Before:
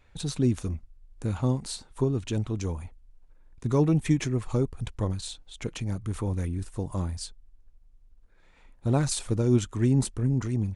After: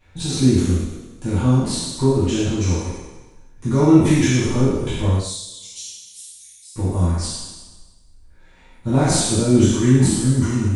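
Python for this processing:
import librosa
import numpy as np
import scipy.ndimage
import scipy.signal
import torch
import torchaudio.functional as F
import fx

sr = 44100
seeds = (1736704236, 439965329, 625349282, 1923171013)

y = fx.spec_trails(x, sr, decay_s=1.18)
y = fx.cheby2_highpass(y, sr, hz=1200.0, order=4, stop_db=60, at=(5.18, 6.76))
y = fx.rev_double_slope(y, sr, seeds[0], early_s=0.48, late_s=1.7, knee_db=-24, drr_db=-8.5)
y = F.gain(torch.from_numpy(y), -2.5).numpy()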